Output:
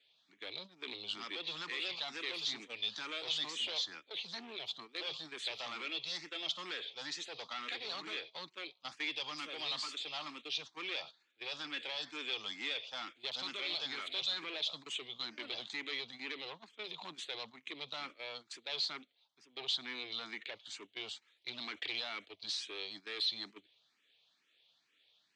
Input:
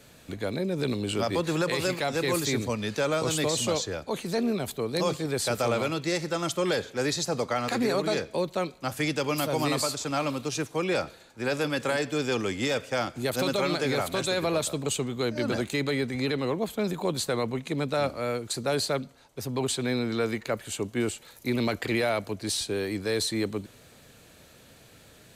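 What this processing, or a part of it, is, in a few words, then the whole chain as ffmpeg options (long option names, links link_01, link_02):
barber-pole phaser into a guitar amplifier: -filter_complex "[0:a]asplit=2[link_01][link_02];[link_02]afreqshift=2.2[link_03];[link_01][link_03]amix=inputs=2:normalize=1,asoftclip=type=tanh:threshold=-29.5dB,highpass=92,equalizer=frequency=310:width_type=q:width=4:gain=4,equalizer=frequency=560:width_type=q:width=4:gain=-4,equalizer=frequency=1500:width_type=q:width=4:gain=-5,equalizer=frequency=3400:width_type=q:width=4:gain=6,lowpass=frequency=3900:width=0.5412,lowpass=frequency=3900:width=1.3066,aderivative,agate=range=-13dB:threshold=-57dB:ratio=16:detection=peak,volume=9dB"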